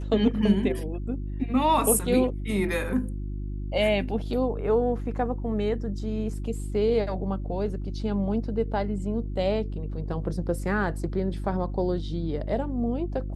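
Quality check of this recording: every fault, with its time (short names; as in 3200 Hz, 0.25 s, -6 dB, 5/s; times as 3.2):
hum 50 Hz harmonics 7 -32 dBFS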